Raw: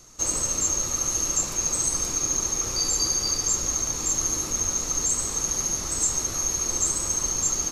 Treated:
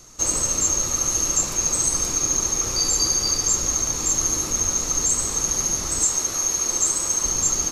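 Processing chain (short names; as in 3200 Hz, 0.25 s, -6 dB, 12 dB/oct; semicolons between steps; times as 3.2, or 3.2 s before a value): 6.04–7.25 low shelf 170 Hz -11 dB; gain +3.5 dB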